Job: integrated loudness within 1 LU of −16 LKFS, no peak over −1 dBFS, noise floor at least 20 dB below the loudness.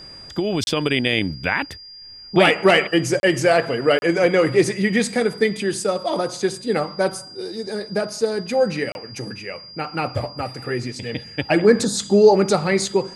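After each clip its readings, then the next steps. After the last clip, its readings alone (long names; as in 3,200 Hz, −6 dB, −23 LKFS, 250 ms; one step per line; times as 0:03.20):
number of dropouts 4; longest dropout 31 ms; interfering tone 4,800 Hz; level of the tone −38 dBFS; integrated loudness −20.0 LKFS; sample peak −2.5 dBFS; target loudness −16.0 LKFS
→ repair the gap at 0:00.64/0:03.20/0:03.99/0:08.92, 31 ms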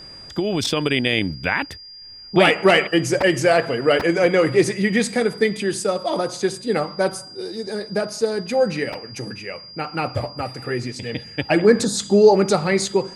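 number of dropouts 0; interfering tone 4,800 Hz; level of the tone −38 dBFS
→ notch filter 4,800 Hz, Q 30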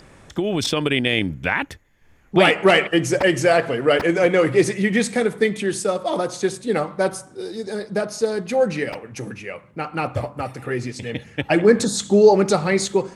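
interfering tone none found; integrated loudness −20.0 LKFS; sample peak −3.0 dBFS; target loudness −16.0 LKFS
→ level +4 dB
brickwall limiter −1 dBFS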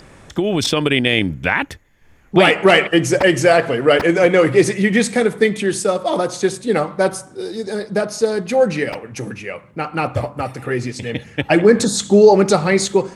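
integrated loudness −16.0 LKFS; sample peak −1.0 dBFS; background noise floor −47 dBFS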